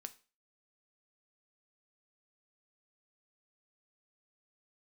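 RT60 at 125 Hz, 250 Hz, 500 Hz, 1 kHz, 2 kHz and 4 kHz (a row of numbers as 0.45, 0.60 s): 0.30, 0.35, 0.35, 0.35, 0.35, 0.35 s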